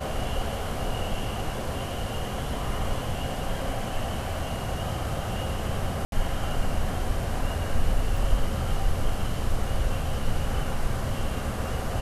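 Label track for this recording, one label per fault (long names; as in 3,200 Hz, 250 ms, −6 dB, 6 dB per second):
6.050000	6.120000	drop-out 72 ms
8.170000	8.170000	drop-out 2.2 ms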